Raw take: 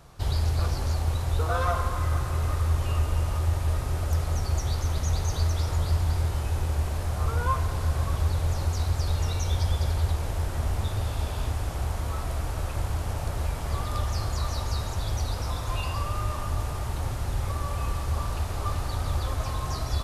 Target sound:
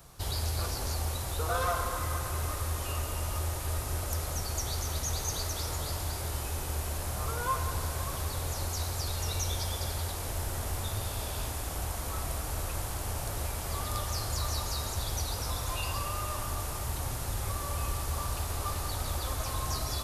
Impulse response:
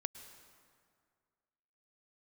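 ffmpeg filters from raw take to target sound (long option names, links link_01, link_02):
-filter_complex "[0:a]aemphasis=mode=production:type=50kf,acrossover=split=230[link_01][link_02];[link_01]alimiter=level_in=1dB:limit=-24dB:level=0:latency=1:release=423,volume=-1dB[link_03];[link_03][link_02]amix=inputs=2:normalize=0[link_04];[1:a]atrim=start_sample=2205[link_05];[link_04][link_05]afir=irnorm=-1:irlink=0,volume=-1.5dB"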